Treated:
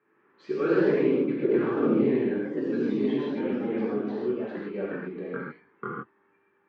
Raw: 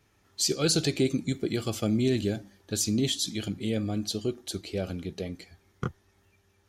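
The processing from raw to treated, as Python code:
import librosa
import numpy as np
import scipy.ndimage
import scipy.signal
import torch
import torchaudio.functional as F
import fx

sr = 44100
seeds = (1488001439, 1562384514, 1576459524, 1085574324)

y = fx.rev_gated(x, sr, seeds[0], gate_ms=180, shape='flat', drr_db=-5.5)
y = fx.echo_pitch(y, sr, ms=143, semitones=2, count=3, db_per_echo=-3.0)
y = fx.cabinet(y, sr, low_hz=200.0, low_slope=24, high_hz=2000.0, hz=(210.0, 410.0, 680.0, 1100.0, 1600.0), db=(-3, 6, -9, 7, 4))
y = y * 10.0 ** (-5.0 / 20.0)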